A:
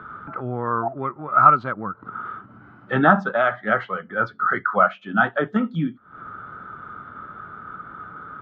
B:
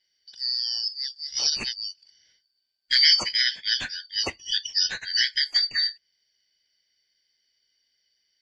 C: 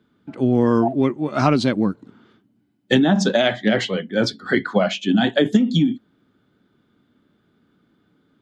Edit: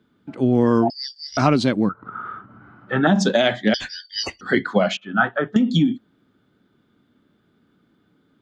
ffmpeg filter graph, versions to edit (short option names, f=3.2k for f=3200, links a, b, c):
-filter_complex "[1:a]asplit=2[a][b];[0:a]asplit=2[c][d];[2:a]asplit=5[e][f][g][h][i];[e]atrim=end=0.902[j];[a]atrim=start=0.898:end=1.372[k];[f]atrim=start=1.368:end=1.892[l];[c]atrim=start=1.888:end=3.072[m];[g]atrim=start=3.068:end=3.742[n];[b]atrim=start=3.738:end=4.412[o];[h]atrim=start=4.408:end=4.972[p];[d]atrim=start=4.968:end=5.562[q];[i]atrim=start=5.558[r];[j][k]acrossfade=d=0.004:c1=hsin:c2=hsin[s];[s][l]acrossfade=d=0.004:c1=hsin:c2=hsin[t];[t][m]acrossfade=d=0.004:c1=hsin:c2=hsin[u];[u][n]acrossfade=d=0.004:c1=hsin:c2=hsin[v];[v][o]acrossfade=d=0.004:c1=hsin:c2=hsin[w];[w][p]acrossfade=d=0.004:c1=hsin:c2=hsin[x];[x][q]acrossfade=d=0.004:c1=hsin:c2=hsin[y];[y][r]acrossfade=d=0.004:c1=hsin:c2=hsin"